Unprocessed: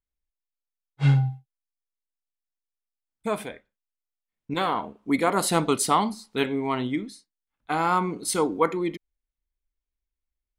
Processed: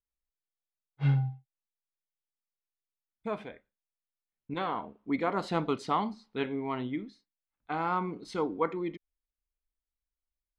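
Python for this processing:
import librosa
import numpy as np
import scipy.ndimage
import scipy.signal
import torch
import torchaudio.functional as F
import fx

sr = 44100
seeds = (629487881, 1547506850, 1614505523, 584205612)

y = fx.air_absorb(x, sr, metres=200.0)
y = y * librosa.db_to_amplitude(-6.5)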